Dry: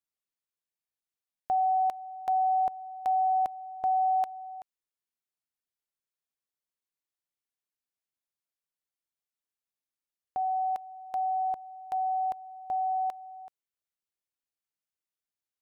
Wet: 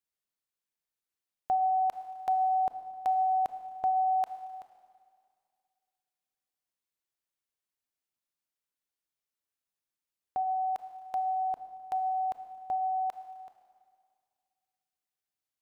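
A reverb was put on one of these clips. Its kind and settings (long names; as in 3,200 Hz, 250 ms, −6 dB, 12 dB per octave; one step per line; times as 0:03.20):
four-comb reverb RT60 2.1 s, combs from 25 ms, DRR 9 dB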